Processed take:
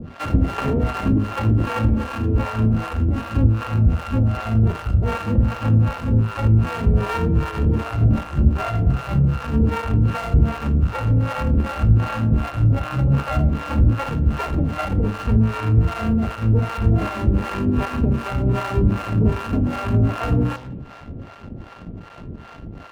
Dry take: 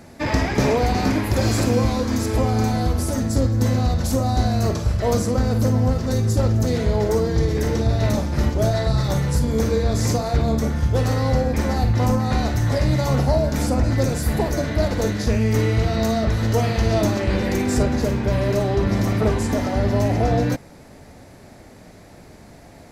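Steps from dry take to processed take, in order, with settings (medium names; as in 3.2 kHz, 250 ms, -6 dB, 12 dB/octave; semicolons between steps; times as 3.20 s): sorted samples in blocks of 32 samples; low-pass 2.7 kHz 24 dB/octave; bass shelf 450 Hz +9.5 dB; de-hum 63.37 Hz, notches 16; in parallel at -11.5 dB: fuzz box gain 37 dB, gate -42 dBFS; on the sum: harmonic tremolo 2.6 Hz, depth 100%, crossover 530 Hz; on a send at -20 dB: reverberation RT60 1.0 s, pre-delay 49 ms; on the sum: trim -3.5 dB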